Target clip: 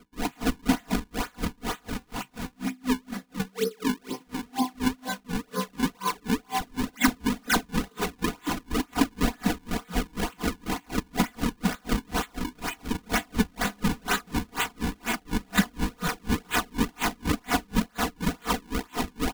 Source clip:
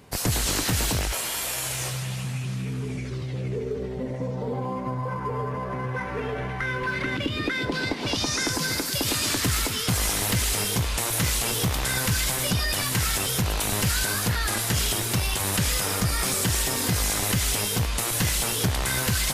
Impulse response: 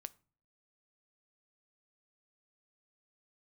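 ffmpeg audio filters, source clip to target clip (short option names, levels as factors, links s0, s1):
-filter_complex "[0:a]afftfilt=real='re*pow(10,17/40*sin(2*PI*(0.67*log(max(b,1)*sr/1024/100)/log(2)-(-0.48)*(pts-256)/sr)))':imag='im*pow(10,17/40*sin(2*PI*(0.67*log(max(b,1)*sr/1024/100)/log(2)-(-0.48)*(pts-256)/sr)))':win_size=1024:overlap=0.75,asplit=2[s0][s1];[s1]alimiter=limit=0.141:level=0:latency=1:release=218,volume=0.794[s2];[s0][s2]amix=inputs=2:normalize=0,flanger=delay=1.4:depth=2.3:regen=-76:speed=0.14:shape=sinusoidal,highpass=f=160:w=0.5412,highpass=f=160:w=1.3066,highshelf=f=10000:g=-11,asplit=2[s3][s4];[s4]aecho=0:1:156|312:0.1|0.018[s5];[s3][s5]amix=inputs=2:normalize=0,acrusher=samples=39:mix=1:aa=0.000001:lfo=1:lforange=62.4:lforate=2.1,equalizer=f=530:t=o:w=0.25:g=-14.5,aecho=1:1:4.1:0.94,aeval=exprs='val(0)*pow(10,-35*(0.5-0.5*cos(2*PI*4.1*n/s))/20)':c=same,volume=1.33"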